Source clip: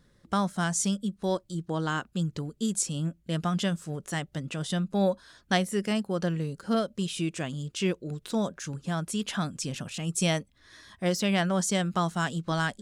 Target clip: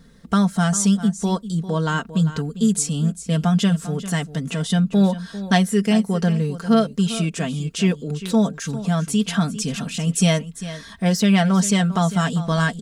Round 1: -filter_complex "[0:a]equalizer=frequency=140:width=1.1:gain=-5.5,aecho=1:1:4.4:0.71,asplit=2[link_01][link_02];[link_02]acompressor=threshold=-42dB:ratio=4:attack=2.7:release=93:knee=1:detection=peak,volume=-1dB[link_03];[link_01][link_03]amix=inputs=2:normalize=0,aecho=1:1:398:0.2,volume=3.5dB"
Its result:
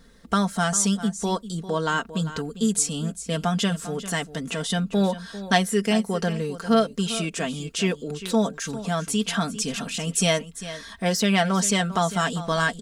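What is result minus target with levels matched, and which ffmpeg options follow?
125 Hz band −4.0 dB
-filter_complex "[0:a]equalizer=frequency=140:width=1.1:gain=5.5,aecho=1:1:4.4:0.71,asplit=2[link_01][link_02];[link_02]acompressor=threshold=-42dB:ratio=4:attack=2.7:release=93:knee=1:detection=peak,volume=-1dB[link_03];[link_01][link_03]amix=inputs=2:normalize=0,aecho=1:1:398:0.2,volume=3.5dB"

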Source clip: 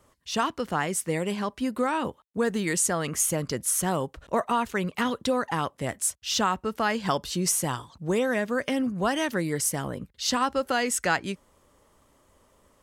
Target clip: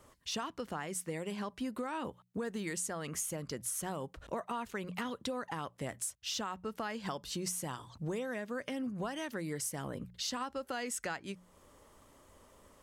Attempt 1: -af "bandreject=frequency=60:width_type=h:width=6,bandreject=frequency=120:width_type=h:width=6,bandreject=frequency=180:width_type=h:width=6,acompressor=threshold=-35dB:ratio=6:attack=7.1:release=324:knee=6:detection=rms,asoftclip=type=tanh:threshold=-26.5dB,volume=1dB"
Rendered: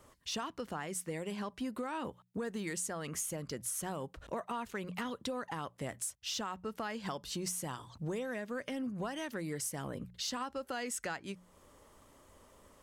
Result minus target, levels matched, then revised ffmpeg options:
soft clipping: distortion +13 dB
-af "bandreject=frequency=60:width_type=h:width=6,bandreject=frequency=120:width_type=h:width=6,bandreject=frequency=180:width_type=h:width=6,acompressor=threshold=-35dB:ratio=6:attack=7.1:release=324:knee=6:detection=rms,asoftclip=type=tanh:threshold=-19.5dB,volume=1dB"

